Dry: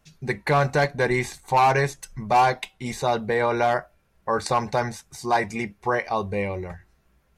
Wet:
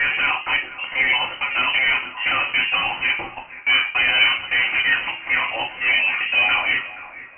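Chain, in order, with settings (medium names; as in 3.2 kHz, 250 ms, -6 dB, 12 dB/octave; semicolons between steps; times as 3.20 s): slices played last to first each 282 ms, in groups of 3; high-pass 330 Hz 6 dB/octave; tilt EQ +1.5 dB/octave; overdrive pedal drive 35 dB, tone 1 kHz, clips at -7 dBFS; thinning echo 475 ms, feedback 41%, high-pass 770 Hz, level -14 dB; simulated room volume 130 m³, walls furnished, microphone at 1.6 m; frequency inversion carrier 3 kHz; trim -6 dB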